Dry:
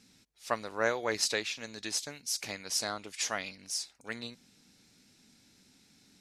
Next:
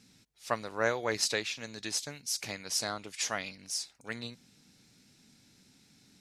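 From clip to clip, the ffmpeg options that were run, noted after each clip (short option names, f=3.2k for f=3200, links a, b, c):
-af "equalizer=f=130:t=o:w=0.73:g=6"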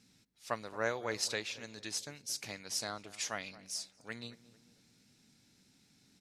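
-filter_complex "[0:a]asplit=2[a][b];[b]adelay=224,lowpass=f=1.1k:p=1,volume=-16dB,asplit=2[c][d];[d]adelay=224,lowpass=f=1.1k:p=1,volume=0.52,asplit=2[e][f];[f]adelay=224,lowpass=f=1.1k:p=1,volume=0.52,asplit=2[g][h];[h]adelay=224,lowpass=f=1.1k:p=1,volume=0.52,asplit=2[i][j];[j]adelay=224,lowpass=f=1.1k:p=1,volume=0.52[k];[a][c][e][g][i][k]amix=inputs=6:normalize=0,volume=-5dB"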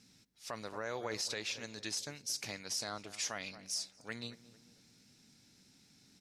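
-af "equalizer=f=5.4k:t=o:w=0.53:g=3.5,alimiter=level_in=4.5dB:limit=-24dB:level=0:latency=1:release=47,volume=-4.5dB,volume=1.5dB"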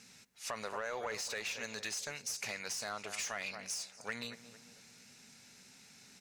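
-filter_complex "[0:a]asplit=2[a][b];[b]highpass=f=720:p=1,volume=13dB,asoftclip=type=tanh:threshold=-26.5dB[c];[a][c]amix=inputs=2:normalize=0,lowpass=f=7.9k:p=1,volume=-6dB,acompressor=threshold=-38dB:ratio=6,superequalizer=6b=0.398:13b=0.562:14b=0.562,volume=3dB"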